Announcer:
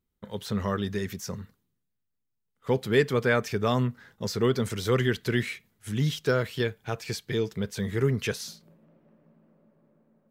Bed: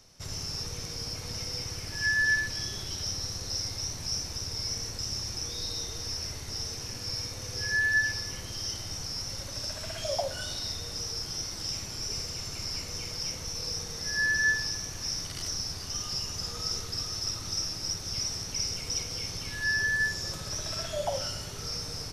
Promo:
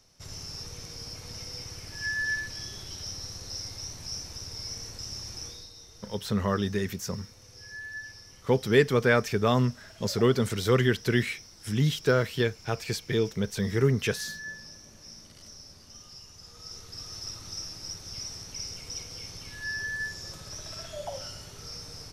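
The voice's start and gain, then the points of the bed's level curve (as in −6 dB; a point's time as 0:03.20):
5.80 s, +1.5 dB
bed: 0:05.47 −4.5 dB
0:05.71 −14.5 dB
0:16.40 −14.5 dB
0:17.14 −6 dB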